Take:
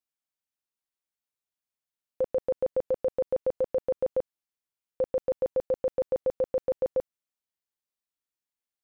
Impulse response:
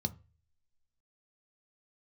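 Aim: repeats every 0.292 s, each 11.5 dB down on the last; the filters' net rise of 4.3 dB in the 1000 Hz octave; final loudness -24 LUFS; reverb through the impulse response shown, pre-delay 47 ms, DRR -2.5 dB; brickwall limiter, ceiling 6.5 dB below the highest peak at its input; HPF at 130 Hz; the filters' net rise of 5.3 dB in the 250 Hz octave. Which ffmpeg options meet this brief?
-filter_complex "[0:a]highpass=130,equalizer=f=250:t=o:g=7,equalizer=f=1k:t=o:g=5.5,alimiter=limit=-22.5dB:level=0:latency=1,aecho=1:1:292|584|876:0.266|0.0718|0.0194,asplit=2[a][b];[1:a]atrim=start_sample=2205,adelay=47[c];[b][c]afir=irnorm=-1:irlink=0,volume=1dB[d];[a][d]amix=inputs=2:normalize=0,volume=3dB"

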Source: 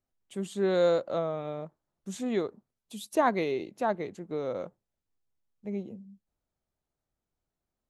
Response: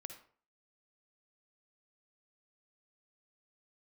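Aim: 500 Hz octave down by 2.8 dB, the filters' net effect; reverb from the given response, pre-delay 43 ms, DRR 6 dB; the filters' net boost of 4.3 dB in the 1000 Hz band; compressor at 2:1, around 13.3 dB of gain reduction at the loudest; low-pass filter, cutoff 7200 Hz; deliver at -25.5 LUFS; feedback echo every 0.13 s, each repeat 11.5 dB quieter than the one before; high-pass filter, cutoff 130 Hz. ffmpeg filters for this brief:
-filter_complex "[0:a]highpass=130,lowpass=7.2k,equalizer=f=500:t=o:g=-5.5,equalizer=f=1k:t=o:g=7.5,acompressor=threshold=-42dB:ratio=2,aecho=1:1:130|260|390:0.266|0.0718|0.0194,asplit=2[a][b];[1:a]atrim=start_sample=2205,adelay=43[c];[b][c]afir=irnorm=-1:irlink=0,volume=-1.5dB[d];[a][d]amix=inputs=2:normalize=0,volume=15dB"

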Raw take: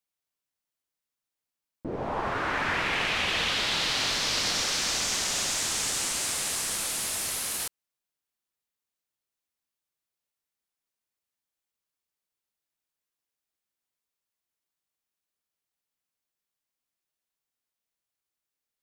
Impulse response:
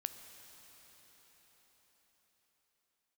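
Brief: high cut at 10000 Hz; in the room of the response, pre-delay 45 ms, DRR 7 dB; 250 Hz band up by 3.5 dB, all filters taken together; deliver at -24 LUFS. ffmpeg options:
-filter_complex "[0:a]lowpass=10k,equalizer=f=250:t=o:g=4.5,asplit=2[a][b];[1:a]atrim=start_sample=2205,adelay=45[c];[b][c]afir=irnorm=-1:irlink=0,volume=-5.5dB[d];[a][d]amix=inputs=2:normalize=0,volume=2dB"

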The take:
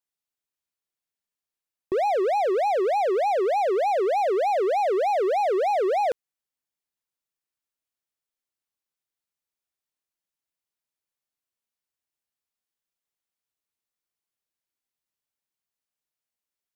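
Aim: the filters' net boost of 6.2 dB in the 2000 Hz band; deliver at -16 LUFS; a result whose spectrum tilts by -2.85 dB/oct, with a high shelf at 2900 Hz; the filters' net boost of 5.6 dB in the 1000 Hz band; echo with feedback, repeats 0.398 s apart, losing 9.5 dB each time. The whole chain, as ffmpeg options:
-af "equalizer=f=1k:t=o:g=7.5,equalizer=f=2k:t=o:g=7,highshelf=f=2.9k:g=-4,aecho=1:1:398|796|1194|1592:0.335|0.111|0.0365|0.012,volume=3dB"

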